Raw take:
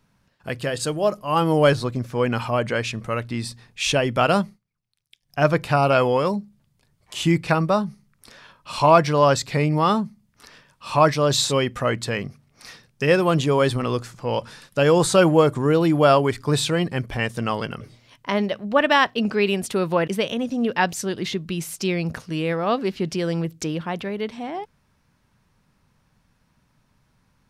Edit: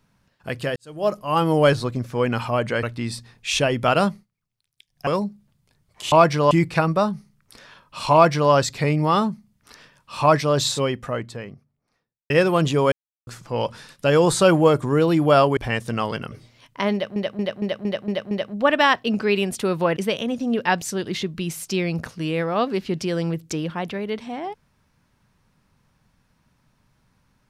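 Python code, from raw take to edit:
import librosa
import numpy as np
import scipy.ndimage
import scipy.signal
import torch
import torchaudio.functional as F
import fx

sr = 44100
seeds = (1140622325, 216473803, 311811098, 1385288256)

y = fx.studio_fade_out(x, sr, start_s=11.06, length_s=1.97)
y = fx.edit(y, sr, fx.fade_in_span(start_s=0.76, length_s=0.32, curve='qua'),
    fx.cut(start_s=2.83, length_s=0.33),
    fx.cut(start_s=5.4, length_s=0.79),
    fx.duplicate(start_s=8.86, length_s=0.39, to_s=7.24),
    fx.silence(start_s=13.65, length_s=0.35),
    fx.cut(start_s=16.3, length_s=0.76),
    fx.stutter(start_s=18.42, slice_s=0.23, count=7), tone=tone)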